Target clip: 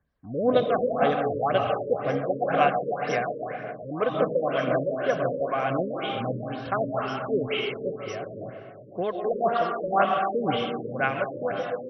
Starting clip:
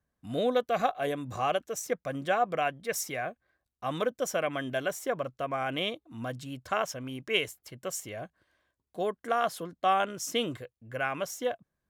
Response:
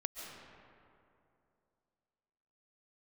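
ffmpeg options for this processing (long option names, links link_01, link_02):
-filter_complex "[1:a]atrim=start_sample=2205[link_01];[0:a][link_01]afir=irnorm=-1:irlink=0,aphaser=in_gain=1:out_gain=1:delay=2.8:decay=0.35:speed=1.9:type=sinusoidal,afftfilt=real='re*lt(b*sr/1024,570*pow(6100/570,0.5+0.5*sin(2*PI*2*pts/sr)))':imag='im*lt(b*sr/1024,570*pow(6100/570,0.5+0.5*sin(2*PI*2*pts/sr)))':win_size=1024:overlap=0.75,volume=5.5dB"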